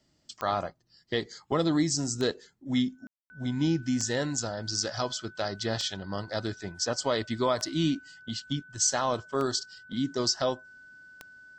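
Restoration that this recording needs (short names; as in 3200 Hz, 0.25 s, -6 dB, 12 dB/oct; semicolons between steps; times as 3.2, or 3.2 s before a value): de-click; notch 1500 Hz, Q 30; room tone fill 3.07–3.3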